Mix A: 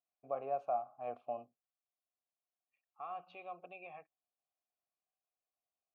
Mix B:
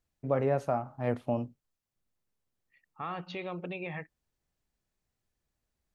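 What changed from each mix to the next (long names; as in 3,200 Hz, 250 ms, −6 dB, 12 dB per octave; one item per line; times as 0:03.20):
master: remove formant filter a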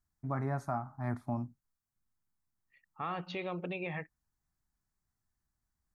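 first voice: add phaser with its sweep stopped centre 1,200 Hz, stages 4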